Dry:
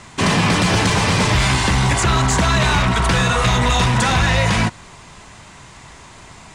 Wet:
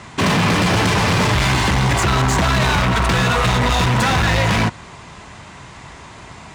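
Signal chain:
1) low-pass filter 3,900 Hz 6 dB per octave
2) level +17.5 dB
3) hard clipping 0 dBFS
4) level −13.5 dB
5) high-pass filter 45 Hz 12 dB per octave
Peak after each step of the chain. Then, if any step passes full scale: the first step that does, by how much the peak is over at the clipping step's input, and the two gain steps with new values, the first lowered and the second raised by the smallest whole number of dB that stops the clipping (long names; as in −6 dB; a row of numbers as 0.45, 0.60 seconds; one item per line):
−10.0, +7.5, 0.0, −13.5, −7.5 dBFS
step 2, 7.5 dB
step 2 +9.5 dB, step 4 −5.5 dB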